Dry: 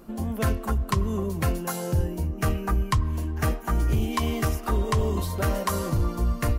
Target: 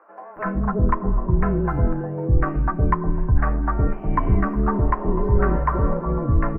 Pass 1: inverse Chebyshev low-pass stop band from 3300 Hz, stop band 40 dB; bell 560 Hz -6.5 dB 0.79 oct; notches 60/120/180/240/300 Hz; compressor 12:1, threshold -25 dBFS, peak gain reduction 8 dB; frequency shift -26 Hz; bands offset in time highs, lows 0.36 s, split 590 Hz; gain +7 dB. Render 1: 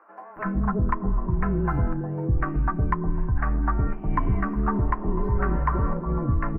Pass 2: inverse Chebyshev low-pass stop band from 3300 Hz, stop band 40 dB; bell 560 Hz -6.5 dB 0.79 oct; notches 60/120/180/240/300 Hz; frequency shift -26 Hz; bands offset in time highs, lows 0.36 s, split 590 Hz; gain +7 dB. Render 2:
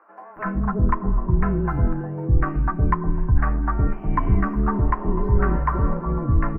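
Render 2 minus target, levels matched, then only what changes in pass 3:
500 Hz band -3.0 dB
remove: bell 560 Hz -6.5 dB 0.79 oct

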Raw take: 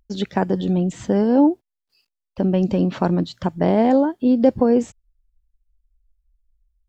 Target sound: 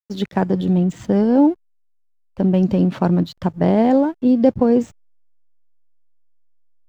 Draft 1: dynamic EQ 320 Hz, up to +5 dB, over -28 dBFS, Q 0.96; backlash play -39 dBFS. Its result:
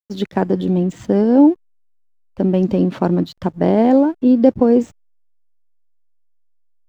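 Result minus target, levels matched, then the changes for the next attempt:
125 Hz band -3.0 dB
change: dynamic EQ 130 Hz, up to +5 dB, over -28 dBFS, Q 0.96

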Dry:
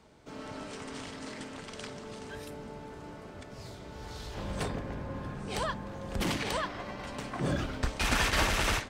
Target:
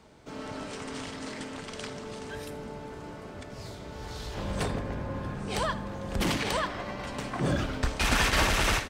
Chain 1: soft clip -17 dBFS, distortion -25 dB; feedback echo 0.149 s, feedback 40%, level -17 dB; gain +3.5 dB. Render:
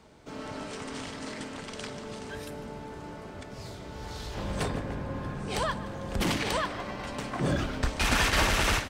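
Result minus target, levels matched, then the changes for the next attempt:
echo 69 ms late
change: feedback echo 80 ms, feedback 40%, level -17 dB

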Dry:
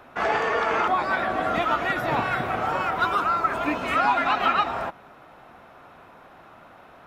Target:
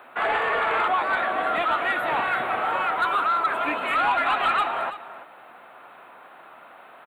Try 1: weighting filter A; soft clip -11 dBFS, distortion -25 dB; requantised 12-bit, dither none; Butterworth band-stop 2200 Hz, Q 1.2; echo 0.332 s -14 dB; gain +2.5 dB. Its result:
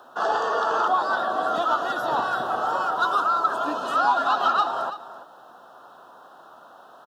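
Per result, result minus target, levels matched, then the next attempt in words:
soft clip: distortion -11 dB; 2000 Hz band -4.5 dB
weighting filter A; soft clip -19 dBFS, distortion -14 dB; requantised 12-bit, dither none; Butterworth band-stop 2200 Hz, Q 1.2; echo 0.332 s -14 dB; gain +2.5 dB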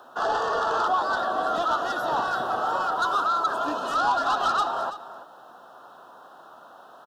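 2000 Hz band -4.5 dB
weighting filter A; soft clip -19 dBFS, distortion -14 dB; requantised 12-bit, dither none; Butterworth band-stop 5600 Hz, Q 1.2; echo 0.332 s -14 dB; gain +2.5 dB

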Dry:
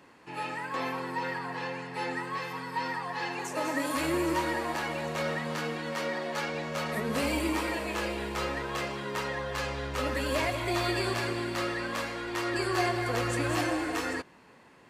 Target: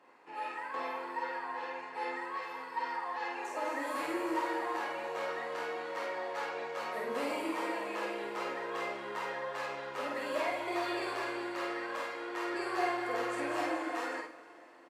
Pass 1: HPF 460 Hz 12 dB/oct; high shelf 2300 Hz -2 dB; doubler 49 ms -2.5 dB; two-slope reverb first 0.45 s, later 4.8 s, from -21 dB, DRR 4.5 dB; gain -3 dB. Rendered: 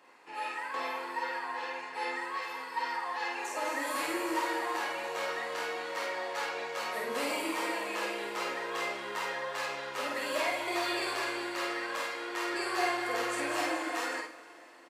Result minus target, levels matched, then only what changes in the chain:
4000 Hz band +5.0 dB
change: high shelf 2300 Hz -13 dB

